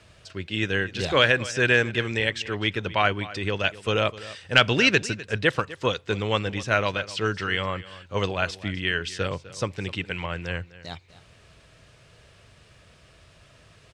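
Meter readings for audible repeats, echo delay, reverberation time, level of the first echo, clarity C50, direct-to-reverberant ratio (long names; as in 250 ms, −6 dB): 1, 253 ms, no reverb audible, −17.5 dB, no reverb audible, no reverb audible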